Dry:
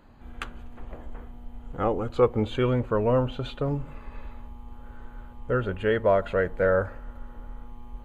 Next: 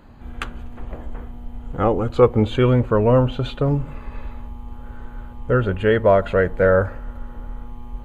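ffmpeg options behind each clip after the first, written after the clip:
ffmpeg -i in.wav -af "equalizer=frequency=94:width=0.42:gain=3.5,volume=6dB" out.wav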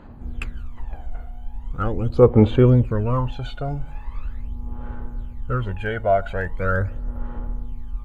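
ffmpeg -i in.wav -af "aphaser=in_gain=1:out_gain=1:delay=1.4:decay=0.74:speed=0.41:type=sinusoidal,volume=-7.5dB" out.wav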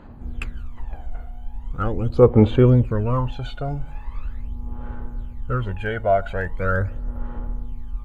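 ffmpeg -i in.wav -af anull out.wav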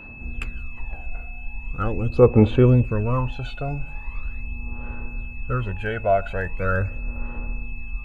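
ffmpeg -i in.wav -af "aeval=exprs='val(0)+0.0112*sin(2*PI*2600*n/s)':channel_layout=same,volume=-1dB" out.wav

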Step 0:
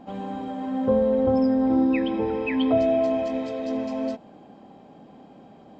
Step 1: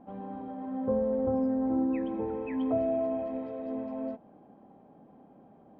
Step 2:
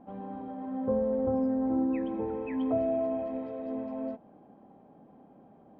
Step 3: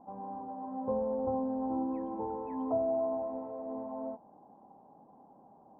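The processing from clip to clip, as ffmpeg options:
ffmpeg -i in.wav -af "lowpass=1400,volume=-7.5dB" out.wav
ffmpeg -i in.wav -af anull out.wav
ffmpeg -i in.wav -af "acrusher=bits=8:mode=log:mix=0:aa=0.000001,lowpass=frequency=930:width_type=q:width=4.9,volume=-7dB" out.wav

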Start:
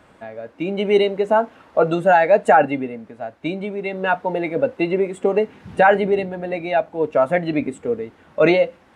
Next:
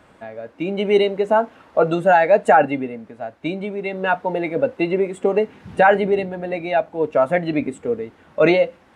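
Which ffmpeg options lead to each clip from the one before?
ffmpeg -i in.wav -af anull out.wav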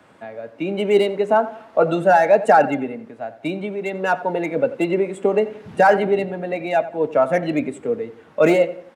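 ffmpeg -i in.wav -filter_complex "[0:a]highpass=110,acrossover=split=170|1700[link_01][link_02][link_03];[link_03]asoftclip=type=hard:threshold=-28.5dB[link_04];[link_01][link_02][link_04]amix=inputs=3:normalize=0,asplit=2[link_05][link_06];[link_06]adelay=88,lowpass=frequency=2600:poles=1,volume=-15dB,asplit=2[link_07][link_08];[link_08]adelay=88,lowpass=frequency=2600:poles=1,volume=0.42,asplit=2[link_09][link_10];[link_10]adelay=88,lowpass=frequency=2600:poles=1,volume=0.42,asplit=2[link_11][link_12];[link_12]adelay=88,lowpass=frequency=2600:poles=1,volume=0.42[link_13];[link_05][link_07][link_09][link_11][link_13]amix=inputs=5:normalize=0" out.wav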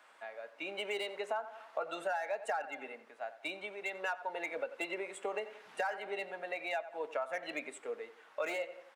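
ffmpeg -i in.wav -af "highpass=900,acompressor=threshold=-28dB:ratio=6,volume=-5.5dB" out.wav

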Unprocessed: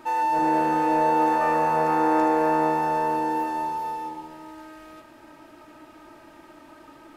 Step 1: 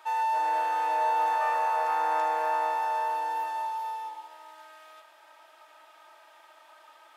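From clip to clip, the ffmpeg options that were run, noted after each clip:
ffmpeg -i in.wav -af "highpass=frequency=640:width=0.5412,highpass=frequency=640:width=1.3066,equalizer=frequency=3400:width_type=o:width=0.28:gain=6,volume=-3.5dB" out.wav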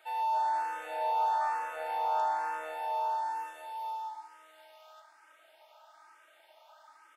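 ffmpeg -i in.wav -filter_complex "[0:a]aecho=1:1:1.4:0.34,asplit=2[link_01][link_02];[link_02]asoftclip=type=tanh:threshold=-24dB,volume=-11dB[link_03];[link_01][link_03]amix=inputs=2:normalize=0,asplit=2[link_04][link_05];[link_05]afreqshift=1.1[link_06];[link_04][link_06]amix=inputs=2:normalize=1,volume=-4.5dB" out.wav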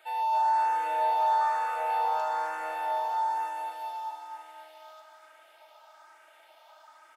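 ffmpeg -i in.wav -af "aecho=1:1:264|528|792|1056|1320|1584:0.447|0.228|0.116|0.0593|0.0302|0.0154,volume=2.5dB" out.wav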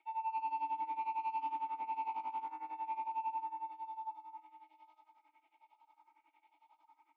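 ffmpeg -i in.wav -filter_complex "[0:a]asoftclip=type=hard:threshold=-28.5dB,tremolo=f=11:d=0.85,asplit=3[link_01][link_02][link_03];[link_01]bandpass=frequency=300:width_type=q:width=8,volume=0dB[link_04];[link_02]bandpass=frequency=870:width_type=q:width=8,volume=-6dB[link_05];[link_03]bandpass=frequency=2240:width_type=q:width=8,volume=-9dB[link_06];[link_04][link_05][link_06]amix=inputs=3:normalize=0,volume=2.5dB" out.wav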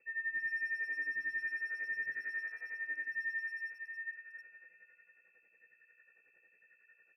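ffmpeg -i in.wav -filter_complex "[0:a]aeval=exprs='val(0)+0.000316*(sin(2*PI*60*n/s)+sin(2*PI*2*60*n/s)/2+sin(2*PI*3*60*n/s)/3+sin(2*PI*4*60*n/s)/4+sin(2*PI*5*60*n/s)/5)':channel_layout=same,lowpass=frequency=2300:width_type=q:width=0.5098,lowpass=frequency=2300:width_type=q:width=0.6013,lowpass=frequency=2300:width_type=q:width=0.9,lowpass=frequency=2300:width_type=q:width=2.563,afreqshift=-2700,asplit=2[link_01][link_02];[link_02]adelay=310,highpass=300,lowpass=3400,asoftclip=type=hard:threshold=-38.5dB,volume=-14dB[link_03];[link_01][link_03]amix=inputs=2:normalize=0" out.wav

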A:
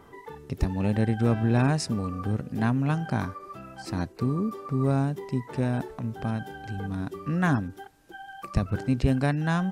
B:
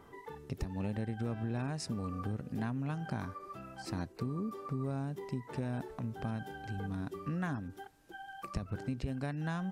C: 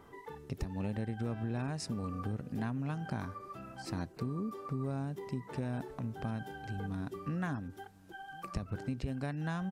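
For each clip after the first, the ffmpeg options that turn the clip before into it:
ffmpeg -i in.wav -af "acompressor=threshold=-28dB:ratio=6,volume=-5dB" out.wav
ffmpeg -i in.wav -filter_complex "[0:a]asplit=2[link_01][link_02];[link_02]adelay=1050,volume=-23dB,highshelf=frequency=4000:gain=-23.6[link_03];[link_01][link_03]amix=inputs=2:normalize=0" out.wav

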